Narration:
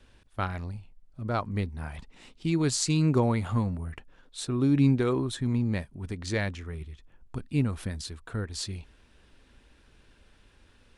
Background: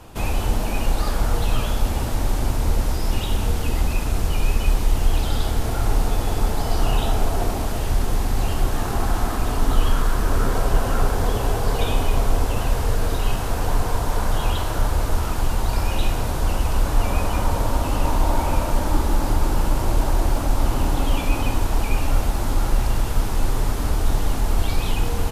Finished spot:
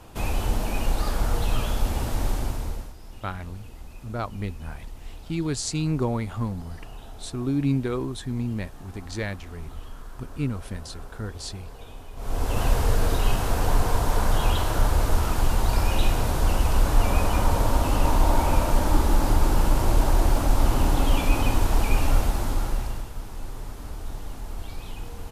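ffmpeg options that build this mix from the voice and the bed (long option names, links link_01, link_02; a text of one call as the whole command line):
ffmpeg -i stem1.wav -i stem2.wav -filter_complex "[0:a]adelay=2850,volume=-1.5dB[link_01];[1:a]volume=17.5dB,afade=type=out:start_time=2.27:duration=0.66:silence=0.125893,afade=type=in:start_time=12.16:duration=0.49:silence=0.0891251,afade=type=out:start_time=22.08:duration=1.02:silence=0.199526[link_02];[link_01][link_02]amix=inputs=2:normalize=0" out.wav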